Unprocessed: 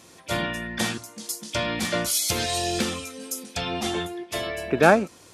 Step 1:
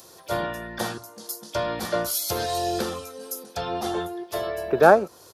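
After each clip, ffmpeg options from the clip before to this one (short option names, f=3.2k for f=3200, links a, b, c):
-filter_complex "[0:a]firequalizer=gain_entry='entry(130,0);entry(260,-5);entry(380,6);entry(760,6);entry(1500,3);entry(2200,-9);entry(4400,0);entry(8000,-6);entry(14000,10)':delay=0.05:min_phase=1,acrossover=split=150|1400|2600[a][b][c][d];[d]acompressor=mode=upward:threshold=-40dB:ratio=2.5[e];[a][b][c][e]amix=inputs=4:normalize=0,volume=-3dB"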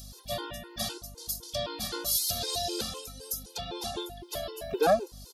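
-af "aeval=exprs='val(0)+0.0112*(sin(2*PI*50*n/s)+sin(2*PI*2*50*n/s)/2+sin(2*PI*3*50*n/s)/3+sin(2*PI*4*50*n/s)/4+sin(2*PI*5*50*n/s)/5)':c=same,highshelf=f=2.5k:t=q:w=1.5:g=9,afftfilt=real='re*gt(sin(2*PI*3.9*pts/sr)*(1-2*mod(floor(b*sr/1024/270),2)),0)':imag='im*gt(sin(2*PI*3.9*pts/sr)*(1-2*mod(floor(b*sr/1024/270),2)),0)':win_size=1024:overlap=0.75,volume=-6dB"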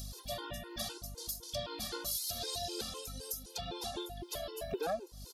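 -af "acompressor=threshold=-44dB:ratio=2,aphaser=in_gain=1:out_gain=1:delay=3.7:decay=0.3:speed=1.9:type=triangular,volume=1dB"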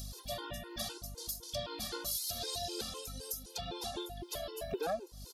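-af anull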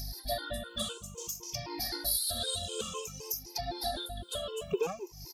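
-af "afftfilt=real='re*pow(10,19/40*sin(2*PI*(0.75*log(max(b,1)*sr/1024/100)/log(2)-(-0.56)*(pts-256)/sr)))':imag='im*pow(10,19/40*sin(2*PI*(0.75*log(max(b,1)*sr/1024/100)/log(2)-(-0.56)*(pts-256)/sr)))':win_size=1024:overlap=0.75"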